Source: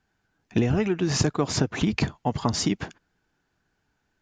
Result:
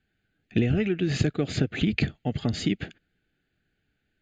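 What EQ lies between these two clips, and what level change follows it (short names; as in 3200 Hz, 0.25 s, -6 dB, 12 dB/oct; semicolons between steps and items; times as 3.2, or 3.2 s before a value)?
synth low-pass 5500 Hz, resonance Q 2; fixed phaser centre 2400 Hz, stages 4; 0.0 dB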